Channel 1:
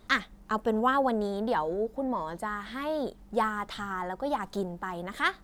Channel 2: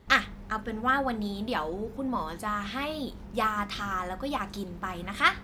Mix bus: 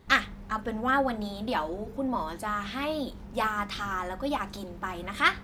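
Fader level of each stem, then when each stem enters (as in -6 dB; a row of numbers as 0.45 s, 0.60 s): -7.0 dB, -0.5 dB; 0.00 s, 0.00 s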